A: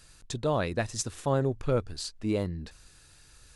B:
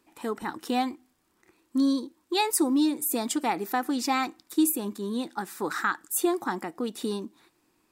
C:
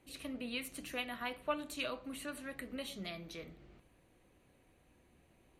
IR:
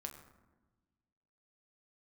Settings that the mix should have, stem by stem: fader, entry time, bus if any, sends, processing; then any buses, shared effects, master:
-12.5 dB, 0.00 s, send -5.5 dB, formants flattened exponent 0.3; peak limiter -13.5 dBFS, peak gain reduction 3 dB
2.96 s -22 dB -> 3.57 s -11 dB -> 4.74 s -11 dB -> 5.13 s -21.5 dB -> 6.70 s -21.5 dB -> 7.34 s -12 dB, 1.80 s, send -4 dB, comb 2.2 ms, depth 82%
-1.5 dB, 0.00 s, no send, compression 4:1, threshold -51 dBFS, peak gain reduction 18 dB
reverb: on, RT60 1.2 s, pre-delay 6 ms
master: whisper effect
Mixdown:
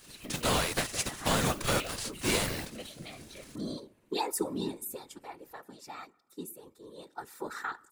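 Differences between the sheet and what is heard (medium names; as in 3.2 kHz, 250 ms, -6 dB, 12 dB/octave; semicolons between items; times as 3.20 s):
stem A -12.5 dB -> -1.5 dB; stem C: missing compression 4:1, threshold -51 dBFS, peak gain reduction 18 dB; reverb return -9.5 dB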